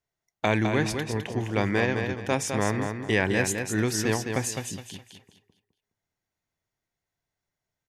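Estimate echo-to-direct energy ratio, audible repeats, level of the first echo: −5.5 dB, 3, −6.0 dB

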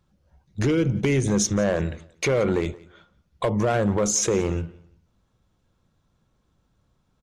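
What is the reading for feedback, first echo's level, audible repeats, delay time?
23%, −22.0 dB, 2, 176 ms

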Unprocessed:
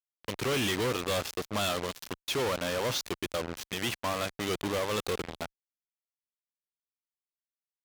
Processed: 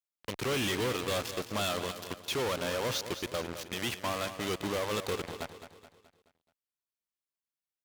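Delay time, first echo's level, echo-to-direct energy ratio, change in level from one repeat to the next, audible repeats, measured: 213 ms, −11.0 dB, −10.0 dB, −7.0 dB, 4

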